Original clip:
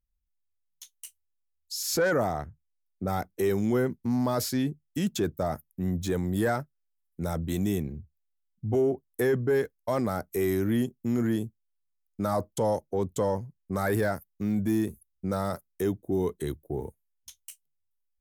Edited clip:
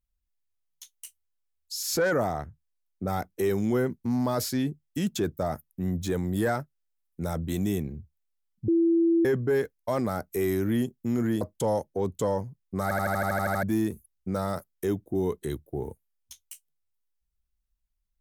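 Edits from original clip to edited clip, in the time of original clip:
8.68–9.25 s: bleep 334 Hz -18.5 dBFS
11.41–12.38 s: delete
13.80 s: stutter in place 0.08 s, 10 plays

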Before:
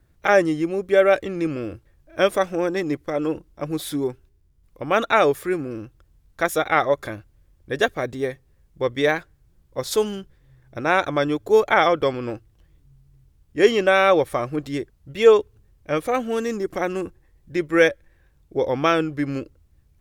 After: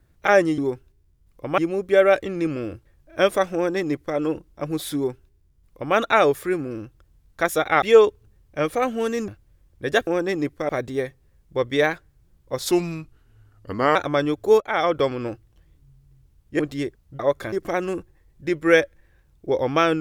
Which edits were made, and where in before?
2.55–3.17 s: copy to 7.94 s
3.95–4.95 s: copy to 0.58 s
6.82–7.15 s: swap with 15.14–16.60 s
9.96–10.98 s: speed 82%
11.63–11.99 s: fade in, from -18.5 dB
13.62–14.54 s: delete

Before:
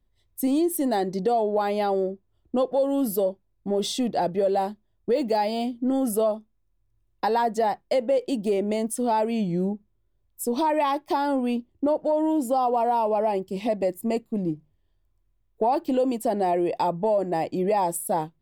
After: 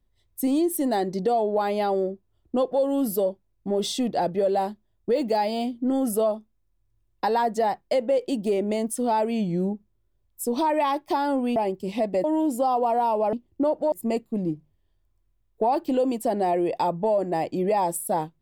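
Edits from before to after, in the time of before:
11.56–12.15 s: swap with 13.24–13.92 s

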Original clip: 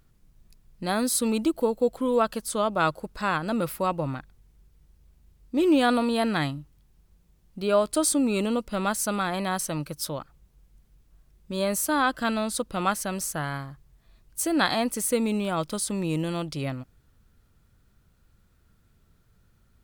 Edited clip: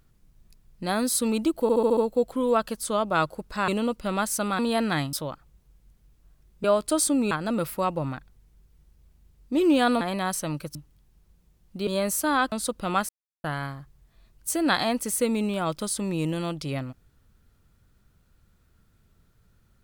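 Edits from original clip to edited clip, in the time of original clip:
1.62 s: stutter 0.07 s, 6 plays
3.33–6.03 s: swap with 8.36–9.27 s
6.57–7.69 s: swap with 10.01–11.52 s
12.17–12.43 s: delete
13.00–13.35 s: mute

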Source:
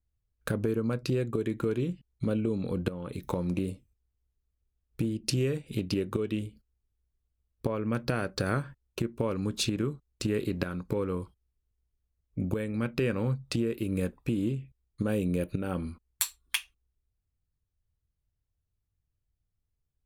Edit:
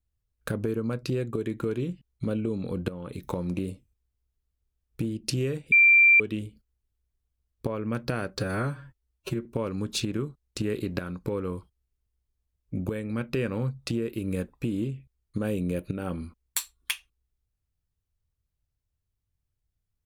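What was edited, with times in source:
5.72–6.20 s: bleep 2.36 kHz -13.5 dBFS
8.39–9.10 s: stretch 1.5×

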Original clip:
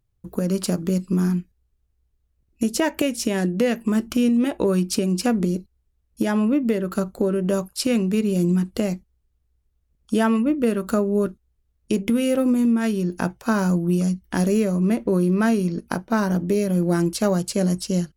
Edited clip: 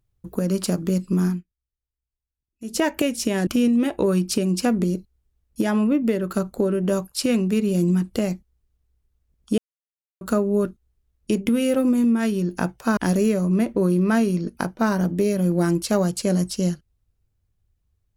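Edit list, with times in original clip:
1.27–2.79 s: dip -20 dB, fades 0.17 s
3.47–4.08 s: delete
10.19–10.82 s: mute
13.58–14.28 s: delete

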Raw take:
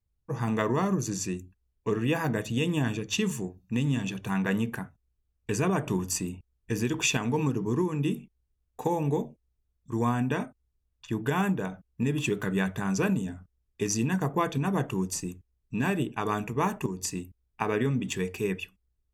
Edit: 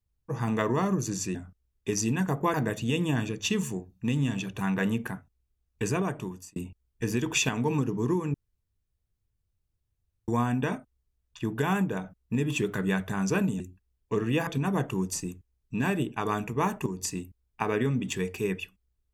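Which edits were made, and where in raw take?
1.35–2.22 s: swap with 13.28–14.47 s
5.53–6.24 s: fade out
8.02–9.96 s: room tone

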